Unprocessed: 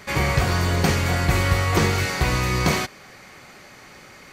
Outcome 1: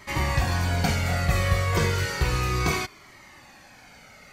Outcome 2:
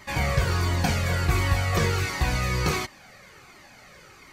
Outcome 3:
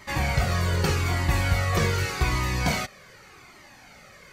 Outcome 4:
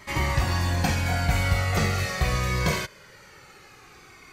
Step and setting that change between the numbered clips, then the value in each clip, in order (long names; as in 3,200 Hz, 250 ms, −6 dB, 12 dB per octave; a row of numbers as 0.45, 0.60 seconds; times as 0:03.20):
flanger whose copies keep moving one way, speed: 0.32, 1.4, 0.84, 0.21 Hertz